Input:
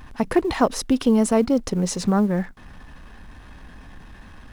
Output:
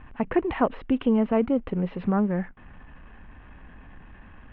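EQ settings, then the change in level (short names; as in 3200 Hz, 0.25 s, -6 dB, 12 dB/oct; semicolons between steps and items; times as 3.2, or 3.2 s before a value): steep low-pass 3000 Hz 48 dB/oct; -4.0 dB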